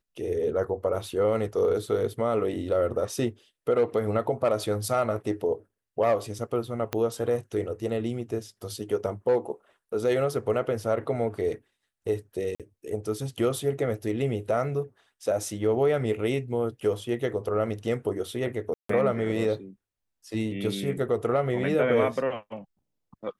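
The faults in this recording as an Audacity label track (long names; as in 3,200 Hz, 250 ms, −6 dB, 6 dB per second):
6.930000	6.930000	click −12 dBFS
12.550000	12.600000	drop-out 47 ms
18.740000	18.890000	drop-out 154 ms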